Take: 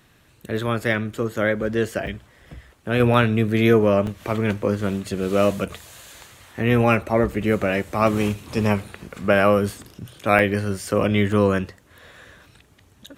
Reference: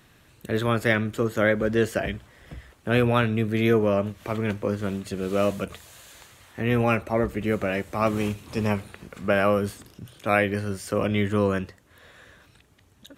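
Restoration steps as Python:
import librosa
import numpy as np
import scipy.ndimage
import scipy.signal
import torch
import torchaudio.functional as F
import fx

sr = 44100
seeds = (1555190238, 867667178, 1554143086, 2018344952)

y = fx.fix_interpolate(x, sr, at_s=(2.07, 3.14, 4.07, 7.32, 10.39, 11.32, 11.81, 12.16), length_ms=1.2)
y = fx.fix_level(y, sr, at_s=3.0, step_db=-4.5)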